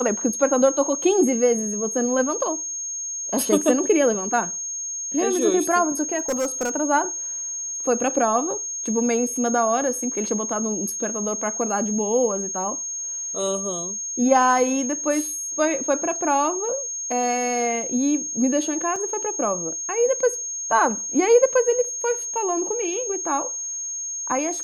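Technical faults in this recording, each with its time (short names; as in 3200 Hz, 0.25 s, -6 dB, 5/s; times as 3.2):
tone 6500 Hz -27 dBFS
6.18–6.76 clipped -19.5 dBFS
18.96 gap 2.9 ms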